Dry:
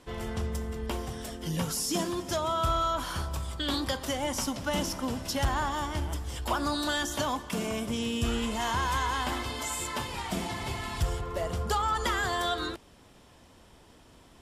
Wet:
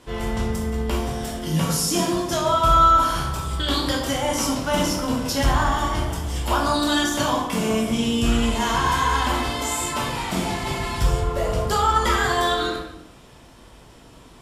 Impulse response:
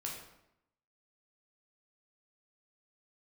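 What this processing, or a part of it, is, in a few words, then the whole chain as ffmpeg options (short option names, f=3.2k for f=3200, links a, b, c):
bathroom: -filter_complex "[1:a]atrim=start_sample=2205[a];[0:a][a]afir=irnorm=-1:irlink=0,volume=8.5dB"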